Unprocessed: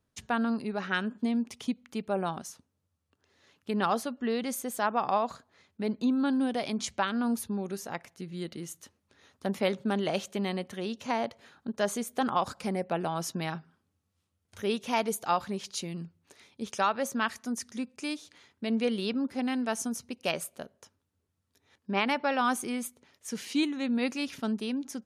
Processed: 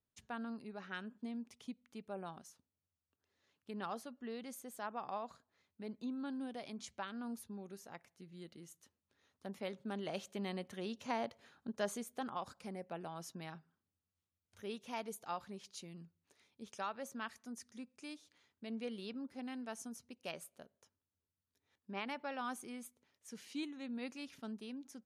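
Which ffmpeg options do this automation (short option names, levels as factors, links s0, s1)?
-af "volume=0.398,afade=t=in:st=9.71:d=1.08:silence=0.446684,afade=t=out:st=11.74:d=0.56:silence=0.473151"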